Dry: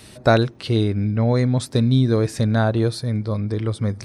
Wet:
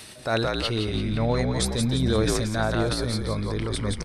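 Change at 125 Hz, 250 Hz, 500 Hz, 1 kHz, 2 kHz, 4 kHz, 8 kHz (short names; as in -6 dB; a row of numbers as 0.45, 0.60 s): -7.5, -6.0, -4.5, -3.5, -2.0, +2.5, +5.5 dB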